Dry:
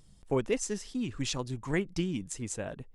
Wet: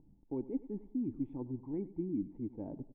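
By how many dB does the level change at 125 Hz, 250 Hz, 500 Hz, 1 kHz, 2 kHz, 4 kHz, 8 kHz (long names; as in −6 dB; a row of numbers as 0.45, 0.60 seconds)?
−9.0 dB, −2.5 dB, −10.0 dB, −15.0 dB, below −35 dB, below −40 dB, below −40 dB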